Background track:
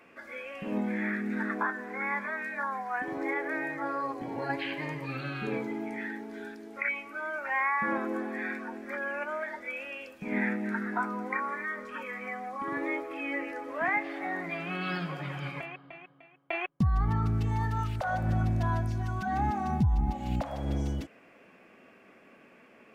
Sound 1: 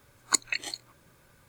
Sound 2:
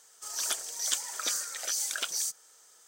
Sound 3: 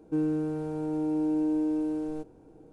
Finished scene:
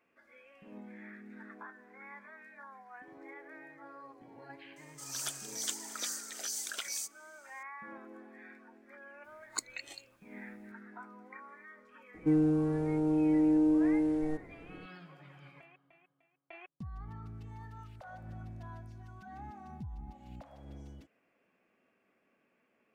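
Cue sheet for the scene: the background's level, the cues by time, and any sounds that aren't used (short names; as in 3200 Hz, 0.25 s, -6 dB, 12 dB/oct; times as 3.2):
background track -18 dB
4.76 add 2 -6.5 dB
9.24 add 1 -12.5 dB
12.14 add 3 -1.5 dB + low shelf 250 Hz +6.5 dB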